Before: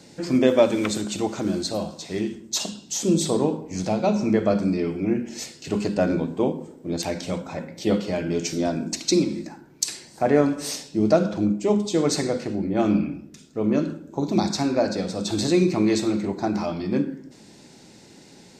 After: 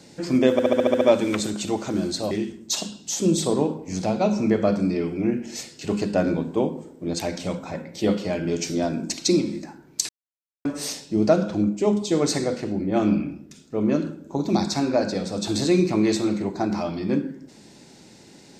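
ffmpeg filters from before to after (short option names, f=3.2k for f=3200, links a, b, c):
-filter_complex "[0:a]asplit=11[a][b][c][d][e][f][g][h][i][j][k];[a]atrim=end=0.592[l];[b]atrim=start=0.518:end=0.592[m];[c]atrim=start=0.518:end=0.592[n];[d]atrim=start=0.518:end=0.592[o];[e]atrim=start=0.518:end=0.592[p];[f]atrim=start=0.518:end=0.592[q];[g]atrim=start=0.518:end=0.592[r];[h]atrim=start=0.518:end=1.822[s];[i]atrim=start=2.138:end=9.92,asetpts=PTS-STARTPTS,afade=t=out:st=7.778:d=0.004:c=hsin[t];[j]atrim=start=9.92:end=10.48,asetpts=PTS-STARTPTS,volume=0[u];[k]atrim=start=10.48,asetpts=PTS-STARTPTS,afade=t=in:d=0.004:c=hsin[v];[l][m]acrossfade=d=0.004:c1=hsin:c2=hsin[w];[w][n]acrossfade=d=0.004:c1=hsin:c2=hsin[x];[x][o]acrossfade=d=0.004:c1=hsin:c2=hsin[y];[y][p]acrossfade=d=0.004:c1=hsin:c2=hsin[z];[z][q]acrossfade=d=0.004:c1=hsin:c2=hsin[aa];[aa][r]acrossfade=d=0.004:c1=hsin:c2=hsin[ab];[ab][s]acrossfade=d=0.004:c1=hsin:c2=hsin[ac];[t][u][v]concat=n=3:v=0:a=1[ad];[ac][ad]acrossfade=d=0.004:c1=hsin:c2=hsin"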